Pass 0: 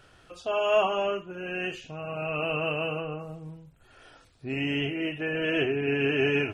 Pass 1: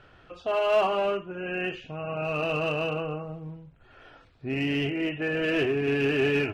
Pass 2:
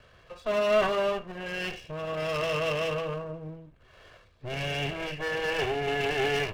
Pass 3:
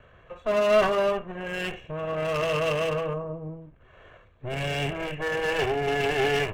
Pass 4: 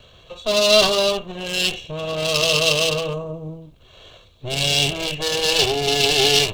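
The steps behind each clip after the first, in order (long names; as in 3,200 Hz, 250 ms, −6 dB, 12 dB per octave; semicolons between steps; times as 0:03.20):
low-pass filter 3,000 Hz 12 dB per octave; in parallel at −3.5 dB: hard clipping −26.5 dBFS, distortion −9 dB; on the sum: level −2 dB
lower of the sound and its delayed copy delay 1.8 ms
adaptive Wiener filter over 9 samples; gain on a spectral selection 0:03.13–0:03.62, 1,300–5,800 Hz −8 dB; level +3.5 dB
high shelf with overshoot 2,700 Hz +14 dB, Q 3; level +4.5 dB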